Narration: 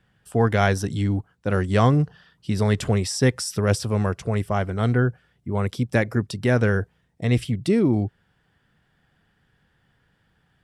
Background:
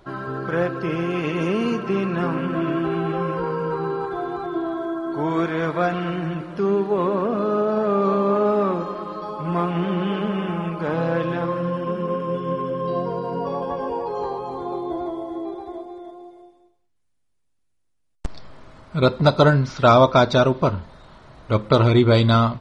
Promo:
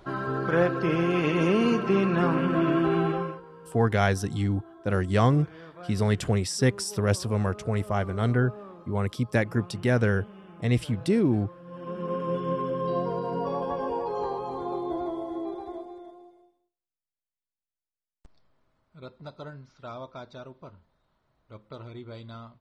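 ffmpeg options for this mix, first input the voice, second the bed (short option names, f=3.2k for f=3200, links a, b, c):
-filter_complex "[0:a]adelay=3400,volume=-3.5dB[a];[1:a]volume=19dB,afade=t=out:st=3.02:d=0.39:silence=0.0749894,afade=t=in:st=11.65:d=0.64:silence=0.105925,afade=t=out:st=15.66:d=1.06:silence=0.0707946[b];[a][b]amix=inputs=2:normalize=0"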